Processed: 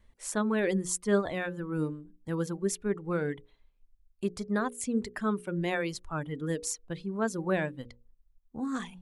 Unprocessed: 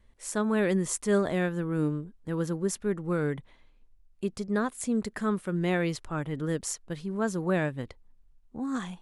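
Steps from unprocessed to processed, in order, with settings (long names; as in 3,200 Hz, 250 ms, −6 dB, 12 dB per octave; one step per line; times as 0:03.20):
reverb reduction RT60 1.6 s
mains-hum notches 60/120/180/240/300/360/420/480/540 Hz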